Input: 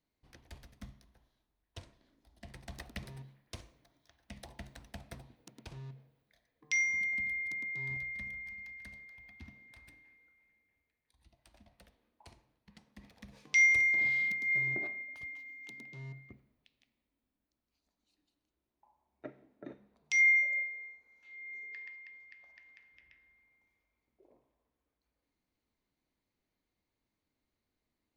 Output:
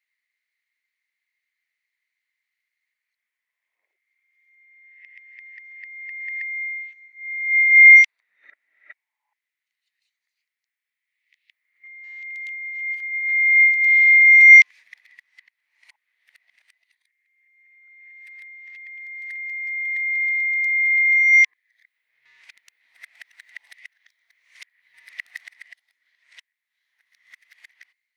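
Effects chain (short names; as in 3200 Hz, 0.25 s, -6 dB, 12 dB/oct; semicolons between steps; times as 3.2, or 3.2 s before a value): whole clip reversed; resonant high-pass 2000 Hz, resonance Q 8; gain +1 dB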